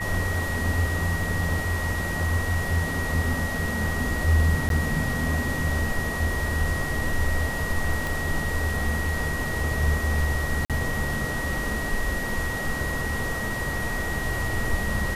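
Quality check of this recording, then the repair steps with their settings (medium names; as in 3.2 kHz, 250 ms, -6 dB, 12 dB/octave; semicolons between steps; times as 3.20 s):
whine 1.9 kHz -30 dBFS
4.69–4.70 s: dropout 12 ms
8.07 s: pop
10.65–10.70 s: dropout 47 ms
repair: de-click; band-stop 1.9 kHz, Q 30; interpolate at 4.69 s, 12 ms; interpolate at 10.65 s, 47 ms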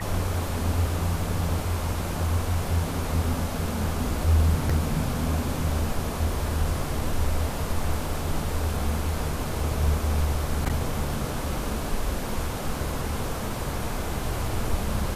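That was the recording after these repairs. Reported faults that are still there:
8.07 s: pop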